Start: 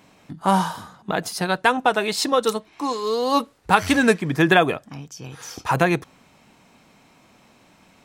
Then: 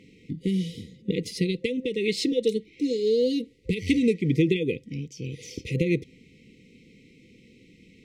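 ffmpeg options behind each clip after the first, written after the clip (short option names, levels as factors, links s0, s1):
-af "acompressor=threshold=0.1:ratio=6,afftfilt=real='re*(1-between(b*sr/4096,520,1900))':imag='im*(1-between(b*sr/4096,520,1900))':win_size=4096:overlap=0.75,aemphasis=mode=reproduction:type=75fm,volume=1.33"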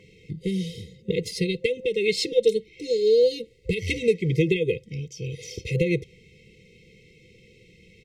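-af "aecho=1:1:1.9:0.9"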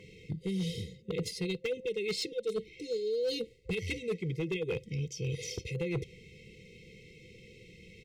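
-af "areverse,acompressor=threshold=0.0316:ratio=10,areverse,volume=22.4,asoftclip=hard,volume=0.0447"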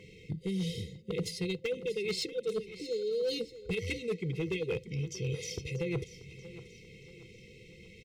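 -af "aecho=1:1:635|1270|1905|2540:0.178|0.0747|0.0314|0.0132"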